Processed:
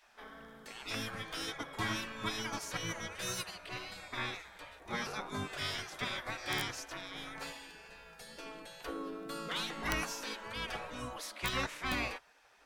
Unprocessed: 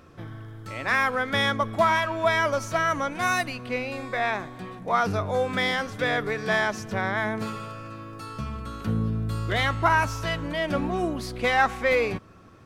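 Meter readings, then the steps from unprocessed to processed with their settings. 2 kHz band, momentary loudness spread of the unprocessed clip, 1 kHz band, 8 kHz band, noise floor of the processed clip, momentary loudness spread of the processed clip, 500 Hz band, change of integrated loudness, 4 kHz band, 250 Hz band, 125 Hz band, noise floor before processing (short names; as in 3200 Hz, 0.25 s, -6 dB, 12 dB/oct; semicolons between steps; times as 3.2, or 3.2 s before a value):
-14.0 dB, 15 LU, -16.5 dB, -3.0 dB, -59 dBFS, 13 LU, -18.0 dB, -13.5 dB, -6.0 dB, -13.0 dB, -16.0 dB, -45 dBFS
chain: wow and flutter 21 cents; spectral gate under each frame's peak -15 dB weak; wrapped overs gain 19 dB; gain -2.5 dB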